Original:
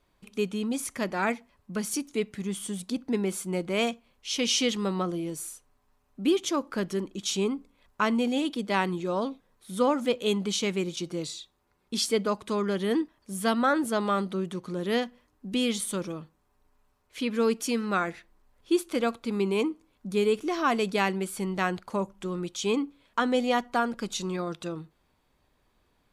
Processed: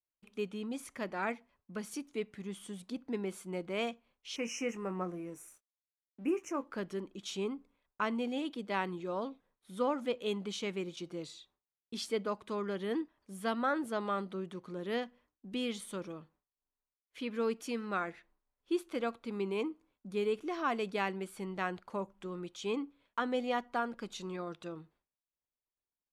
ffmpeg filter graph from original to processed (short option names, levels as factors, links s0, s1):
-filter_complex "[0:a]asettb=1/sr,asplit=3[s0][s1][s2];[s0]atrim=end=4.364[s3];[s1]atrim=start=4.36:end=6.64,asetpts=PTS-STARTPTS,afade=t=in:d=0.004:c=qsin,afade=t=out:st=2.276:d=0.004:c=qsin,asuperstop=centerf=3900:order=12:qfactor=1.5,aeval=exprs='sgn(val(0))*max(abs(val(0))-0.00168,0)':c=same,asplit=2[s4][s5];[s5]adelay=22,volume=0.282[s6];[s4][s6]amix=inputs=2:normalize=0,atrim=end_sample=100548[s7];[s2]atrim=start=6.636[s8];[s3][s7]acrossfade=d=0.004:c1=hsin:c2=qsin[s9];[s9][s8]acrossfade=d=0.004:c1=qsin:c2=hsin,agate=range=0.0224:threshold=0.00224:ratio=3:detection=peak,bass=f=250:g=-4,treble=f=4000:g=-8,volume=0.422"